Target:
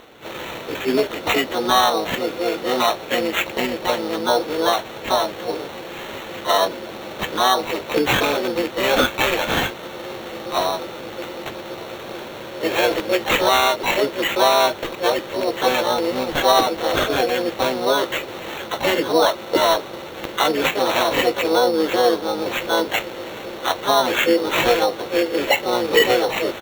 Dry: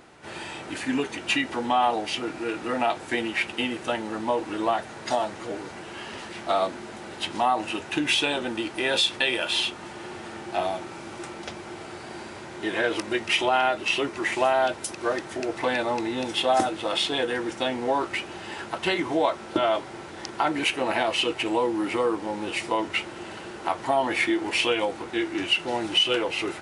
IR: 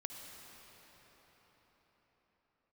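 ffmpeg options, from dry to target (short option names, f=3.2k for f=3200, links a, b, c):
-filter_complex "[0:a]asplit=3[a][b][c];[b]asetrate=29433,aresample=44100,atempo=1.49831,volume=-18dB[d];[c]asetrate=66075,aresample=44100,atempo=0.66742,volume=-1dB[e];[a][d][e]amix=inputs=3:normalize=0,acrusher=samples=9:mix=1:aa=0.000001,equalizer=f=500:t=o:w=1:g=6,equalizer=f=4k:t=o:w=1:g=7,equalizer=f=8k:t=o:w=1:g=-8,volume=1dB"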